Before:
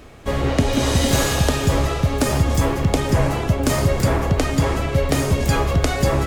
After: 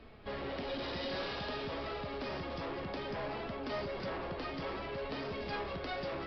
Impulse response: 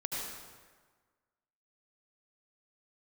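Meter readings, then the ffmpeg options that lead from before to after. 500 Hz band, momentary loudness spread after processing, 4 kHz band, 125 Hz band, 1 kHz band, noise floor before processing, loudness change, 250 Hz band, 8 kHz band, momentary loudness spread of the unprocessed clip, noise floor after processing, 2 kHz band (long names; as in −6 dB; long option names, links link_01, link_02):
−16.5 dB, 2 LU, −16.5 dB, −28.5 dB, −16.0 dB, −25 dBFS, −20.0 dB, −21.0 dB, below −40 dB, 2 LU, −42 dBFS, −15.5 dB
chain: -filter_complex "[0:a]acrossover=split=240|3000[link_01][link_02][link_03];[link_01]acompressor=threshold=-37dB:ratio=2.5[link_04];[link_04][link_02][link_03]amix=inputs=3:normalize=0,aresample=11025,asoftclip=type=tanh:threshold=-23.5dB,aresample=44100,flanger=delay=4.4:depth=1.4:regen=62:speed=0.57:shape=triangular,volume=-7.5dB"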